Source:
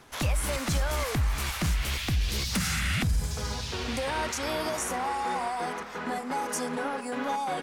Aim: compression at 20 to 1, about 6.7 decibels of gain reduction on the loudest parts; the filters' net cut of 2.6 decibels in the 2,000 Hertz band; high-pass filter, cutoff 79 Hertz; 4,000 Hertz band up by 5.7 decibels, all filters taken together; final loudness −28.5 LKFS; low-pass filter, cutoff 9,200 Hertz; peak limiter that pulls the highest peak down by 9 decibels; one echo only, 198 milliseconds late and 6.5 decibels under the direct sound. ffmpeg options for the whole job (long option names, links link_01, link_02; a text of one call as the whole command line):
ffmpeg -i in.wav -af "highpass=79,lowpass=9200,equalizer=frequency=2000:width_type=o:gain=-6,equalizer=frequency=4000:width_type=o:gain=9,acompressor=threshold=-30dB:ratio=20,alimiter=level_in=4.5dB:limit=-24dB:level=0:latency=1,volume=-4.5dB,aecho=1:1:198:0.473,volume=7dB" out.wav